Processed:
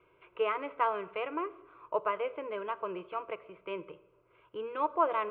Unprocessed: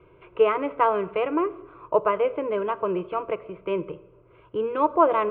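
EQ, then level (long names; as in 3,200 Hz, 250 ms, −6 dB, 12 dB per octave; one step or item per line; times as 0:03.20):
tilt shelving filter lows −6.5 dB, about 1,500 Hz
low-shelf EQ 320 Hz −8.5 dB
high-shelf EQ 2,700 Hz −9.5 dB
−3.5 dB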